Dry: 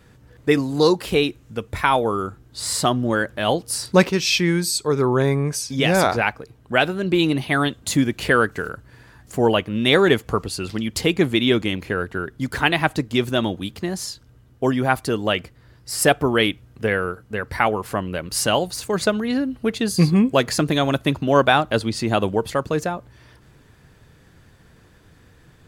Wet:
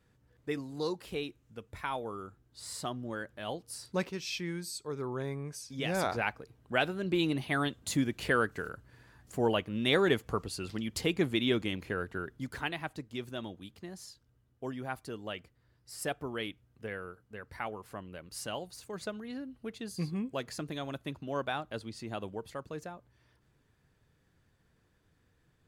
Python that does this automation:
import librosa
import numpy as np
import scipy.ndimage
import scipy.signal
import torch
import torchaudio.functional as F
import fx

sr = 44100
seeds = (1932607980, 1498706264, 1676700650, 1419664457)

y = fx.gain(x, sr, db=fx.line((5.58, -18.0), (6.3, -11.0), (12.27, -11.0), (12.81, -19.0)))